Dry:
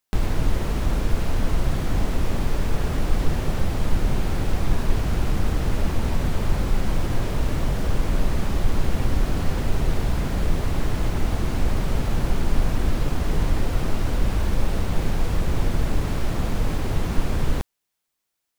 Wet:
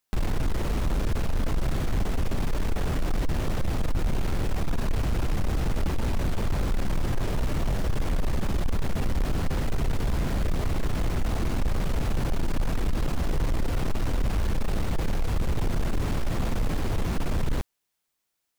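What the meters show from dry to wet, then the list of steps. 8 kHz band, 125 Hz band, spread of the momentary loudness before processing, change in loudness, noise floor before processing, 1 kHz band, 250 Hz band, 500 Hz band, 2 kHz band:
−3.5 dB, −3.5 dB, 1 LU, −3.5 dB, −80 dBFS, −3.5 dB, −3.5 dB, −3.5 dB, −3.5 dB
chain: soft clipping −19 dBFS, distortion −11 dB

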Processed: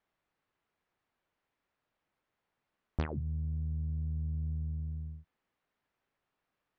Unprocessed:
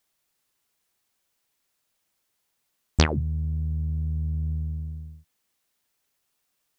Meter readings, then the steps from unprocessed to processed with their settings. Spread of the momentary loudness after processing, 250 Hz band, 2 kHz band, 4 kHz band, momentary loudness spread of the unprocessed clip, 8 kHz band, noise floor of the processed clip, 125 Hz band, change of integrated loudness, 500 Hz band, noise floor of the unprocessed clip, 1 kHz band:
8 LU, −10.0 dB, −17.5 dB, −26.0 dB, 13 LU, can't be measured, below −85 dBFS, −8.0 dB, −9.5 dB, −13.0 dB, −76 dBFS, −14.0 dB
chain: downward compressor 2.5 to 1, threshold −36 dBFS, peak gain reduction 15 dB
low-pass filter 1,900 Hz 12 dB per octave

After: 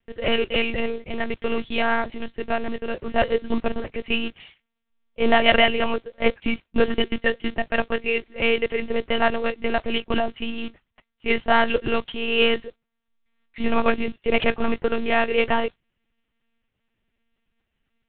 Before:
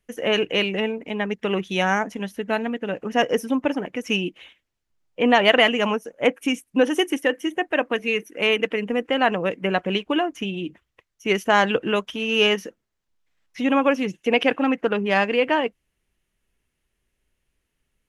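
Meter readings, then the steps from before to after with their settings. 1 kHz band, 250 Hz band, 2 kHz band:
−1.5 dB, −3.0 dB, −1.0 dB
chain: noise that follows the level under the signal 13 dB
one-pitch LPC vocoder at 8 kHz 230 Hz

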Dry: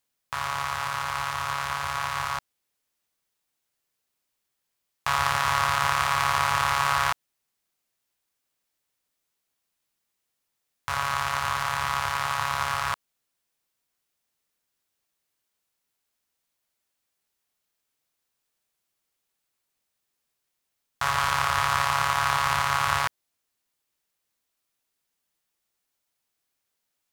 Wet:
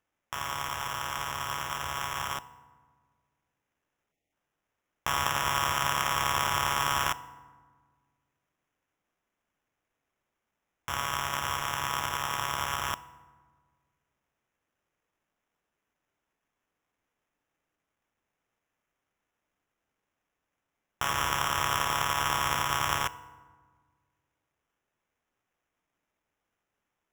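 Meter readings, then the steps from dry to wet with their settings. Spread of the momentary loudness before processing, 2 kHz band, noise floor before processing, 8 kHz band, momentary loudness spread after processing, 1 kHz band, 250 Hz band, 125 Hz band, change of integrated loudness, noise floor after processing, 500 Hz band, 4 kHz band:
8 LU, −5.0 dB, −81 dBFS, 0.0 dB, 8 LU, −5.0 dB, +1.0 dB, −4.0 dB, −4.0 dB, −85 dBFS, −2.5 dB, −1.5 dB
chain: sample-rate reduction 4,400 Hz, jitter 0%
feedback delay network reverb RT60 1.5 s, low-frequency decay 1.45×, high-frequency decay 0.55×, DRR 15.5 dB
time-frequency box erased 0:04.11–0:04.32, 840–1,800 Hz
level −4.5 dB

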